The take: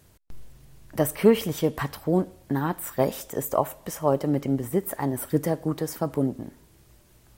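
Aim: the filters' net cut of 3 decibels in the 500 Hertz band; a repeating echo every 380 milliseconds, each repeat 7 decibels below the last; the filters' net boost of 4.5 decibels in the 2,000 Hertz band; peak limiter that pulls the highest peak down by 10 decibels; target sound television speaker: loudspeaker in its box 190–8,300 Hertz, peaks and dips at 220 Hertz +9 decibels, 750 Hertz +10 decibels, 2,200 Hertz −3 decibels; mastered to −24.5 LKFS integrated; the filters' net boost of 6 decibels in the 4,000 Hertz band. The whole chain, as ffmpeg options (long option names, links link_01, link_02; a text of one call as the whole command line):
ffmpeg -i in.wav -af "equalizer=frequency=500:width_type=o:gain=-6.5,equalizer=frequency=2000:width_type=o:gain=5.5,equalizer=frequency=4000:width_type=o:gain=6.5,alimiter=limit=-18dB:level=0:latency=1,highpass=frequency=190:width=0.5412,highpass=frequency=190:width=1.3066,equalizer=frequency=220:width_type=q:width=4:gain=9,equalizer=frequency=750:width_type=q:width=4:gain=10,equalizer=frequency=2200:width_type=q:width=4:gain=-3,lowpass=frequency=8300:width=0.5412,lowpass=frequency=8300:width=1.3066,aecho=1:1:380|760|1140|1520|1900:0.447|0.201|0.0905|0.0407|0.0183,volume=4.5dB" out.wav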